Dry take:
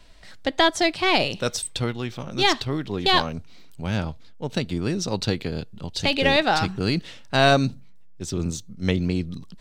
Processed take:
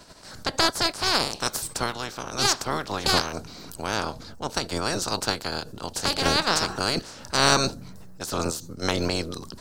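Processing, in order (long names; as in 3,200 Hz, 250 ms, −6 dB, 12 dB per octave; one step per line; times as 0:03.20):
ceiling on every frequency bin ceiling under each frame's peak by 27 dB
flat-topped bell 2,600 Hz −9 dB 1.2 octaves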